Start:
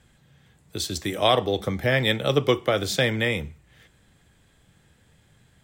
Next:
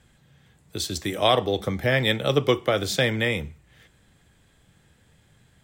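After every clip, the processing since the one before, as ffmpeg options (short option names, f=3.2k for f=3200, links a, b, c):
-af anull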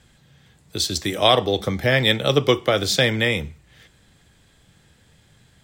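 -af "equalizer=f=4.7k:t=o:w=1.1:g=5,volume=3dB"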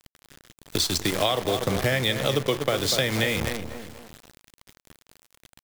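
-filter_complex "[0:a]asplit=2[a][b];[b]adelay=242,lowpass=f=1.6k:p=1,volume=-9dB,asplit=2[c][d];[d]adelay=242,lowpass=f=1.6k:p=1,volume=0.39,asplit=2[e][f];[f]adelay=242,lowpass=f=1.6k:p=1,volume=0.39,asplit=2[g][h];[h]adelay=242,lowpass=f=1.6k:p=1,volume=0.39[i];[c][e][g][i]amix=inputs=4:normalize=0[j];[a][j]amix=inputs=2:normalize=0,acrusher=bits=5:dc=4:mix=0:aa=0.000001,acompressor=threshold=-26dB:ratio=6,volume=5dB"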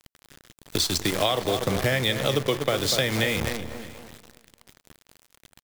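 -af "aecho=1:1:608:0.0668"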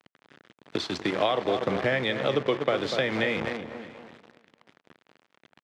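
-af "highpass=190,lowpass=2.5k"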